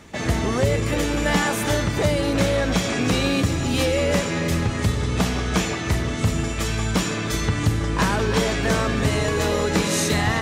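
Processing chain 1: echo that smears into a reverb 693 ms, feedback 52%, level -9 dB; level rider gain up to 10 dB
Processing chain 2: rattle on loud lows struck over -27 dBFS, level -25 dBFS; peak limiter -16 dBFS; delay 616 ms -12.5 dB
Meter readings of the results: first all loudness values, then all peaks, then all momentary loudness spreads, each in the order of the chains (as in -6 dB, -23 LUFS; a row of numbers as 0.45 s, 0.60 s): -15.0 LUFS, -24.5 LUFS; -1.5 dBFS, -14.0 dBFS; 3 LU, 1 LU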